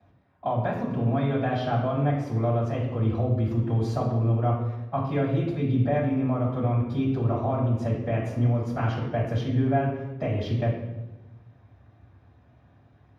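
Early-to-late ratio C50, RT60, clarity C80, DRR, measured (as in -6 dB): 3.5 dB, 1.1 s, 6.0 dB, -7.5 dB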